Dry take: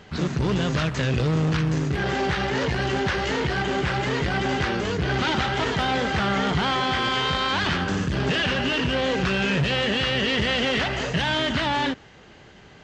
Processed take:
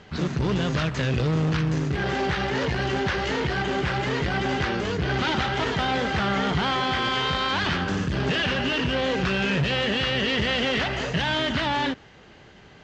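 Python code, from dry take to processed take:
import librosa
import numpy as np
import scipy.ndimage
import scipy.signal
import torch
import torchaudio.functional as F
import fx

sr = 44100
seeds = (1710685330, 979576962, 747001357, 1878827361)

y = scipy.signal.sosfilt(scipy.signal.butter(2, 7300.0, 'lowpass', fs=sr, output='sos'), x)
y = F.gain(torch.from_numpy(y), -1.0).numpy()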